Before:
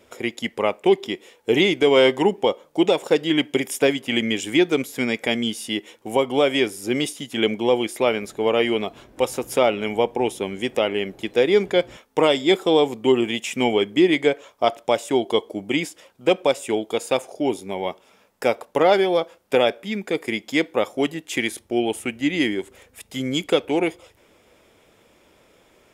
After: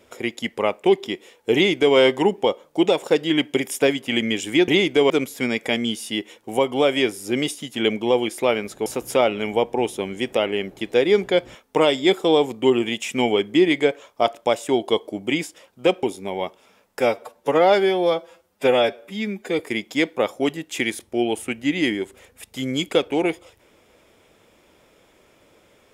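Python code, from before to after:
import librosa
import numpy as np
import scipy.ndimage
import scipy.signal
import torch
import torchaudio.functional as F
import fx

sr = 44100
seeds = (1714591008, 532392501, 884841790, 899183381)

y = fx.edit(x, sr, fx.duplicate(start_s=1.54, length_s=0.42, to_s=4.68),
    fx.cut(start_s=8.44, length_s=0.84),
    fx.cut(start_s=16.45, length_s=1.02),
    fx.stretch_span(start_s=18.44, length_s=1.73, factor=1.5), tone=tone)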